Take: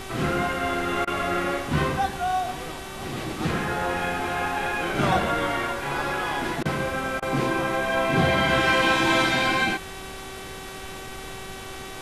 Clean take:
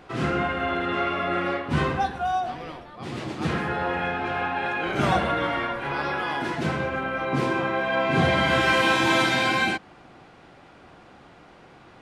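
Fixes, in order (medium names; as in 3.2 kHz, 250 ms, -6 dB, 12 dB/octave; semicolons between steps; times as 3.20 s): de-hum 383 Hz, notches 10; interpolate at 1.05/6.63/7.20 s, 22 ms; noise print and reduce 13 dB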